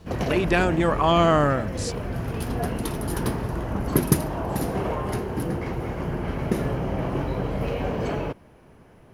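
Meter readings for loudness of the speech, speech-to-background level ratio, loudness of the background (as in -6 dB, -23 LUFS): -21.5 LUFS, 6.5 dB, -28.0 LUFS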